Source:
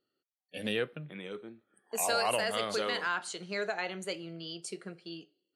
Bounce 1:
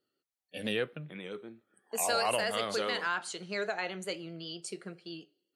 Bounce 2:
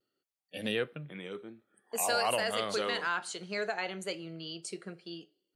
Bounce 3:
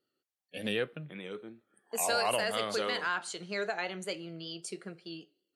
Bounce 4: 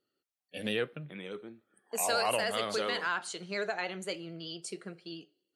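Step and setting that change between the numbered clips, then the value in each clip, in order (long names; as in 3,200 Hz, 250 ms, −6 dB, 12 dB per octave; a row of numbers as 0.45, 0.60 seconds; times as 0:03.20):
pitch vibrato, speed: 7.7, 0.61, 5.2, 13 Hertz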